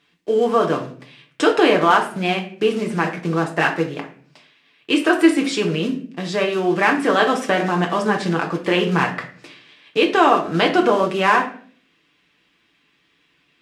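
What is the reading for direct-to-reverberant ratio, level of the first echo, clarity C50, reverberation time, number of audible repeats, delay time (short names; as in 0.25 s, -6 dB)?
0.5 dB, none, 10.5 dB, 0.50 s, none, none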